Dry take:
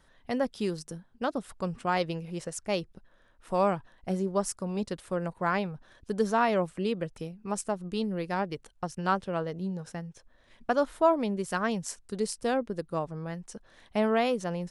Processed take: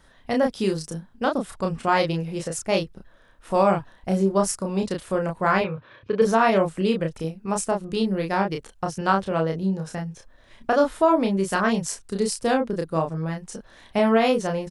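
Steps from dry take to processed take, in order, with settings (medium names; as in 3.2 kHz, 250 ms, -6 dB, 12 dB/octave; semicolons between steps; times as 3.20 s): 5.61–6.22 s: cabinet simulation 110–3800 Hz, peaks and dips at 110 Hz +10 dB, 200 Hz -7 dB, 500 Hz +7 dB, 750 Hz -8 dB, 1.1 kHz +6 dB, 2.4 kHz +9 dB; doubling 31 ms -3.5 dB; loudness maximiser +13.5 dB; trim -7.5 dB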